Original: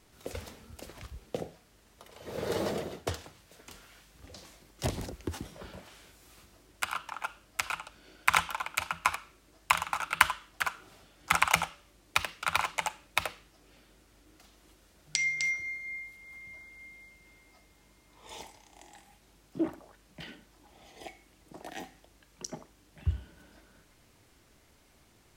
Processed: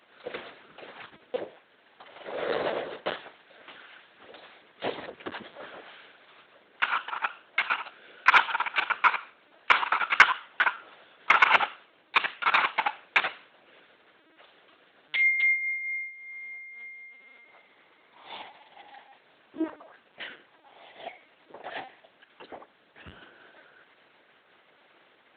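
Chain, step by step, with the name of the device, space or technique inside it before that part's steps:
talking toy (linear-prediction vocoder at 8 kHz; high-pass filter 420 Hz 12 dB per octave; parametric band 1,600 Hz +4.5 dB 0.33 octaves; soft clipping −10 dBFS, distortion −21 dB)
level +6.5 dB

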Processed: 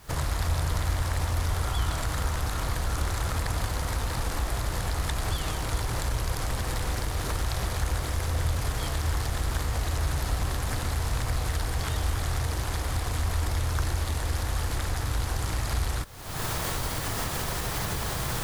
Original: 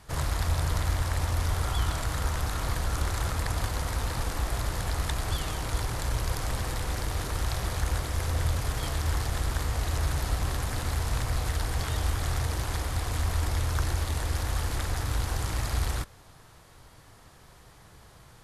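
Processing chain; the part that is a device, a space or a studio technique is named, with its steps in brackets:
cheap recorder with automatic gain (white noise bed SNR 32 dB; camcorder AGC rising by 56 dB per second)

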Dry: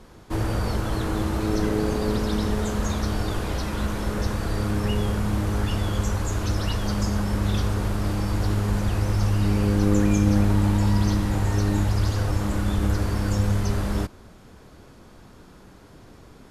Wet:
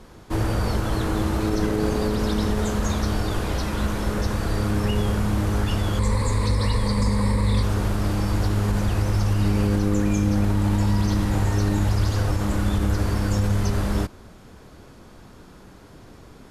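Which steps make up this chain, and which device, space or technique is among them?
0:05.99–0:07.63: EQ curve with evenly spaced ripples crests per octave 0.96, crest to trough 14 dB
clipper into limiter (hard clipping −10.5 dBFS, distortion −35 dB; brickwall limiter −14.5 dBFS, peak gain reduction 4 dB)
level +2 dB

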